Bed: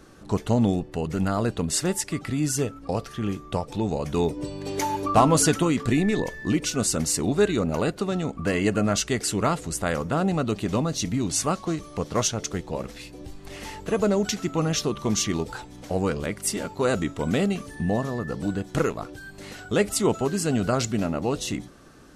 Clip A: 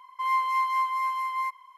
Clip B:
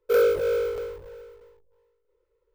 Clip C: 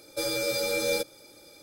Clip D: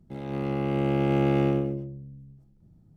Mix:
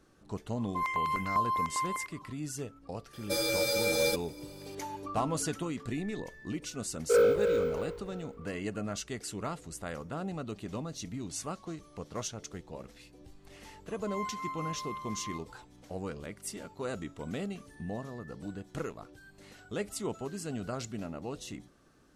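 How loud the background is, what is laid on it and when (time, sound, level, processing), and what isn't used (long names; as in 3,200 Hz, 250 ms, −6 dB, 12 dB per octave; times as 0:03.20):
bed −13.5 dB
0:00.56: mix in A −1 dB + step-sequenced phaser 10 Hz 560–6,000 Hz
0:03.13: mix in C −1 dB
0:07.00: mix in B −3.5 dB + high-shelf EQ 5,000 Hz −8.5 dB
0:13.88: mix in A −13.5 dB
not used: D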